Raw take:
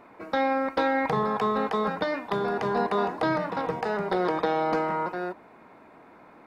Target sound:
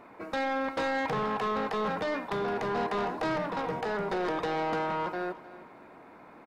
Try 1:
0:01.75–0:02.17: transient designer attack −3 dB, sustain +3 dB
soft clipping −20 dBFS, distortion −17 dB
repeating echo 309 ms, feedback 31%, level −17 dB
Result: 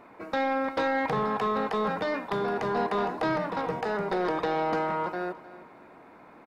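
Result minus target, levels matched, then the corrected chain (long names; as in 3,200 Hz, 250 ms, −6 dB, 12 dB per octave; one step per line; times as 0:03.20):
soft clipping: distortion −6 dB
0:01.75–0:02.17: transient designer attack −3 dB, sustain +3 dB
soft clipping −26 dBFS, distortion −10 dB
repeating echo 309 ms, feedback 31%, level −17 dB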